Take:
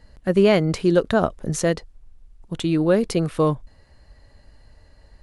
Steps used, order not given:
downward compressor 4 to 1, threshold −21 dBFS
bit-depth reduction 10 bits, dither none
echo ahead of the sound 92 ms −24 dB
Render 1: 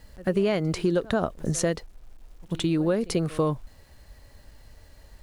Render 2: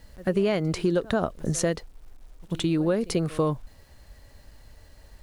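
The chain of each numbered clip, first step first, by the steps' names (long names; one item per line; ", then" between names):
bit-depth reduction, then echo ahead of the sound, then downward compressor
echo ahead of the sound, then bit-depth reduction, then downward compressor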